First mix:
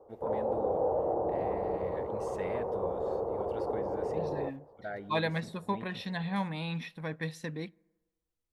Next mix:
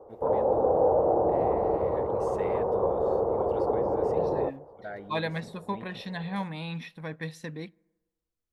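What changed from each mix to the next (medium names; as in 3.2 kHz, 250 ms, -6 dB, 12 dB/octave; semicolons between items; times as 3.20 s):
background +7.0 dB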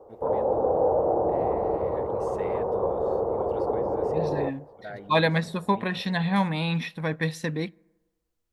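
second voice +9.0 dB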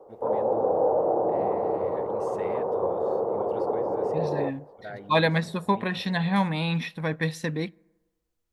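background: add Bessel high-pass 160 Hz, order 8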